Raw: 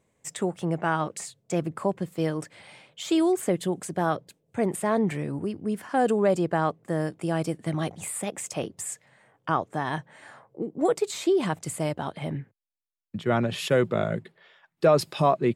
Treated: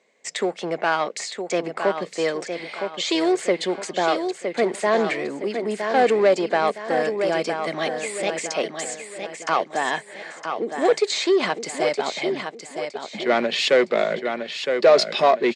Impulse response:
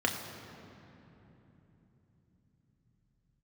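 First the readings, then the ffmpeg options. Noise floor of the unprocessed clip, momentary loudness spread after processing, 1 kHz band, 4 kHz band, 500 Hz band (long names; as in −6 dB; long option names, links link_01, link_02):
−74 dBFS, 12 LU, +5.5 dB, +11.5 dB, +6.0 dB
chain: -filter_complex "[0:a]aecho=1:1:963|1926|2889|3852:0.398|0.151|0.0575|0.0218,asplit=2[link_01][link_02];[link_02]asoftclip=type=hard:threshold=-24.5dB,volume=-4dB[link_03];[link_01][link_03]amix=inputs=2:normalize=0,highpass=frequency=280:width=0.5412,highpass=frequency=280:width=1.3066,equalizer=frequency=310:width_type=q:width=4:gain=-9,equalizer=frequency=920:width_type=q:width=4:gain=-4,equalizer=frequency=1300:width_type=q:width=4:gain=-4,equalizer=frequency=2100:width_type=q:width=4:gain=6,equalizer=frequency=4300:width_type=q:width=4:gain=6,lowpass=frequency=6700:width=0.5412,lowpass=frequency=6700:width=1.3066,volume=4.5dB"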